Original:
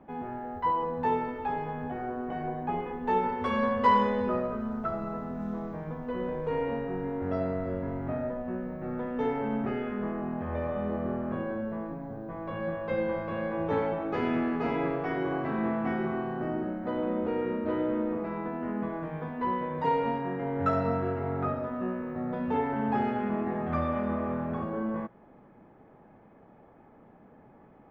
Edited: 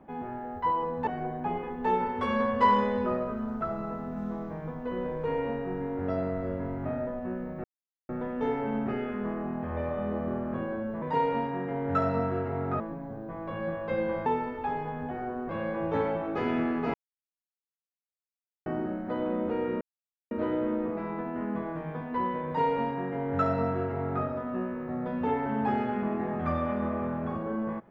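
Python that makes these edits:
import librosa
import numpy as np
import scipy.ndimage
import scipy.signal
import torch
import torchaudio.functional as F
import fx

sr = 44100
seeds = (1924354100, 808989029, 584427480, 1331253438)

y = fx.edit(x, sr, fx.move(start_s=1.07, length_s=1.23, to_s=13.26),
    fx.insert_silence(at_s=8.87, length_s=0.45),
    fx.silence(start_s=14.71, length_s=1.72),
    fx.insert_silence(at_s=17.58, length_s=0.5),
    fx.duplicate(start_s=19.73, length_s=1.78, to_s=11.8), tone=tone)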